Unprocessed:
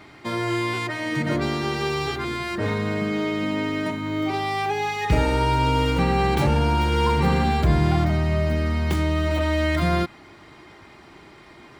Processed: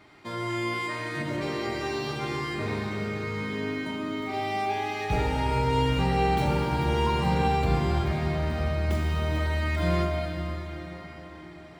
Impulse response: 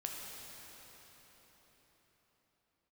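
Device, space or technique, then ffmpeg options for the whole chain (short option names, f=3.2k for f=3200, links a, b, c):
cathedral: -filter_complex "[1:a]atrim=start_sample=2205[a];[0:a][a]afir=irnorm=-1:irlink=0,volume=-5.5dB"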